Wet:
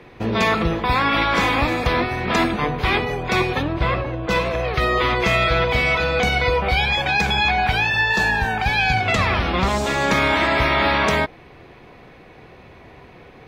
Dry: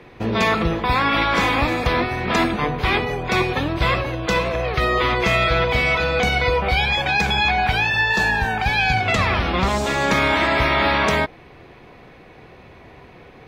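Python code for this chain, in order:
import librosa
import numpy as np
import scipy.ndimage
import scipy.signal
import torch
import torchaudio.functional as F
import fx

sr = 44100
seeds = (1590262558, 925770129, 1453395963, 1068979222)

y = fx.lowpass(x, sr, hz=fx.line((3.61, 2300.0), (4.29, 1100.0)), slope=6, at=(3.61, 4.29), fade=0.02)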